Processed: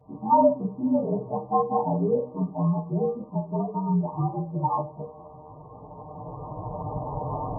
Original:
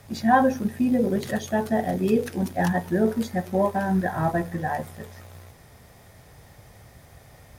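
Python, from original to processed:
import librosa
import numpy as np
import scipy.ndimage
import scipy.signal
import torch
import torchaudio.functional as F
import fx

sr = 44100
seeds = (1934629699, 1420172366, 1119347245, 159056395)

y = fx.partial_stretch(x, sr, pct=116)
y = fx.recorder_agc(y, sr, target_db=-16.5, rise_db_per_s=10.0, max_gain_db=30)
y = fx.highpass(y, sr, hz=170.0, slope=6)
y = fx.dynamic_eq(y, sr, hz=810.0, q=0.85, threshold_db=-38.0, ratio=4.0, max_db=-7, at=(2.32, 4.58), fade=0.02)
y = fx.brickwall_lowpass(y, sr, high_hz=1200.0)
y = y + 0.84 * np.pad(y, (int(6.6 * sr / 1000.0), 0))[:len(y)]
y = fx.rev_schroeder(y, sr, rt60_s=0.31, comb_ms=28, drr_db=13.0)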